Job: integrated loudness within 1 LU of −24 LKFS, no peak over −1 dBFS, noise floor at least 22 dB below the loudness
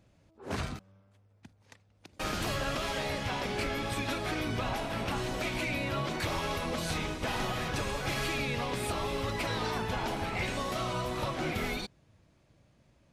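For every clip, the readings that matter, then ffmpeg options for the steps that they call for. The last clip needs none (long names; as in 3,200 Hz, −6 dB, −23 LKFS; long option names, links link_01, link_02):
integrated loudness −33.5 LKFS; sample peak −20.5 dBFS; target loudness −24.0 LKFS
→ -af "volume=9.5dB"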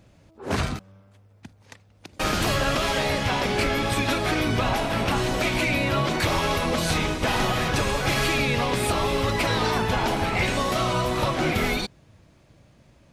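integrated loudness −24.0 LKFS; sample peak −11.0 dBFS; background noise floor −56 dBFS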